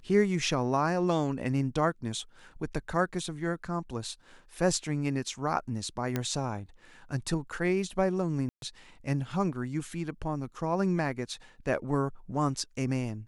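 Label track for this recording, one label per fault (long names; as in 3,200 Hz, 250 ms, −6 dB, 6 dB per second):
6.160000	6.160000	click −15 dBFS
8.490000	8.620000	drop-out 132 ms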